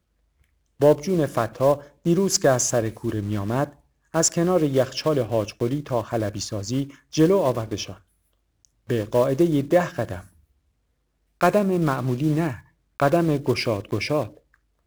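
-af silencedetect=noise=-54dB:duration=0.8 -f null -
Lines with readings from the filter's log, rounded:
silence_start: 10.51
silence_end: 11.41 | silence_duration: 0.90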